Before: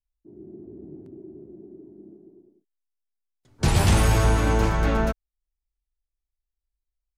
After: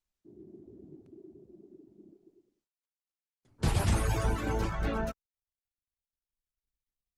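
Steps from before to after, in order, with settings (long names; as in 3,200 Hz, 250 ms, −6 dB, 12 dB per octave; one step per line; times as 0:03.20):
reverb reduction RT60 1.2 s
level −6.5 dB
Opus 20 kbit/s 48,000 Hz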